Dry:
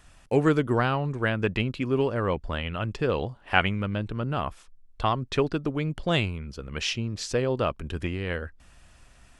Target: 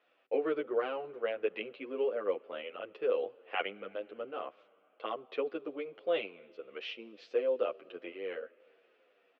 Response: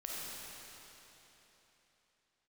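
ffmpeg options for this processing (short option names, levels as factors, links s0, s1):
-filter_complex "[0:a]highpass=f=340:w=0.5412,highpass=f=340:w=1.3066,equalizer=f=500:t=q:w=4:g=9,equalizer=f=950:t=q:w=4:g=-8,equalizer=f=1700:t=q:w=4:g=-6,lowpass=f=3100:w=0.5412,lowpass=f=3100:w=1.3066,asplit=2[s0][s1];[1:a]atrim=start_sample=2205[s2];[s1][s2]afir=irnorm=-1:irlink=0,volume=0.0708[s3];[s0][s3]amix=inputs=2:normalize=0,asplit=2[s4][s5];[s5]adelay=9.2,afreqshift=-2[s6];[s4][s6]amix=inputs=2:normalize=1,volume=0.473"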